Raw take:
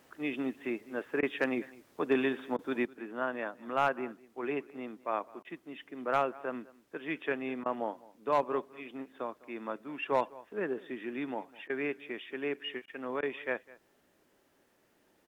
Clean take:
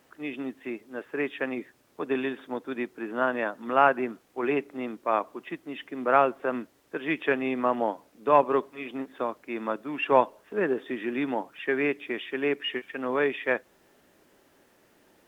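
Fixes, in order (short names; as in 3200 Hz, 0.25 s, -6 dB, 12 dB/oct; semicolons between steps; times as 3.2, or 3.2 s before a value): clip repair -18.5 dBFS; interpolate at 1.21/2.57/5.43/7.64/11.68/12.86/13.21, 16 ms; inverse comb 0.204 s -21.5 dB; gain 0 dB, from 2.85 s +8 dB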